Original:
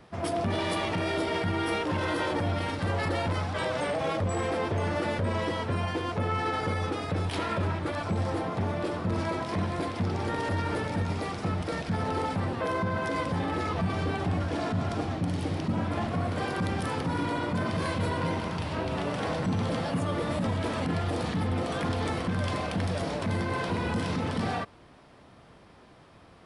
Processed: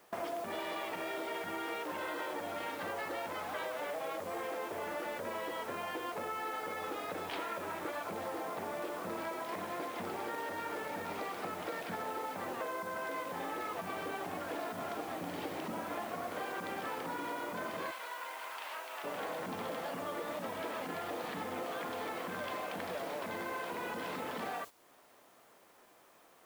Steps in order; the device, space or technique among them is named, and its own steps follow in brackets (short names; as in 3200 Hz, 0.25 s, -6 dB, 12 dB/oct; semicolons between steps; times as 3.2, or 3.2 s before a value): baby monitor (BPF 410–3200 Hz; compressor 8:1, threshold -44 dBFS, peak gain reduction 16.5 dB; white noise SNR 16 dB; gate -52 dBFS, range -13 dB); 17.91–19.04 HPF 930 Hz 12 dB/oct; gain +7 dB